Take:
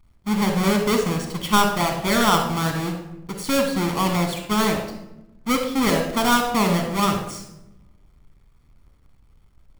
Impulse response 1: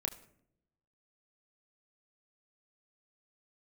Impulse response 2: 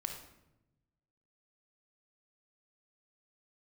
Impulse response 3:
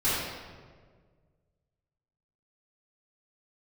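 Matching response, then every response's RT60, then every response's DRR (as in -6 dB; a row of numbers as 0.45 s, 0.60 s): 2; no single decay rate, 0.90 s, 1.7 s; 2.5 dB, 3.5 dB, -15.0 dB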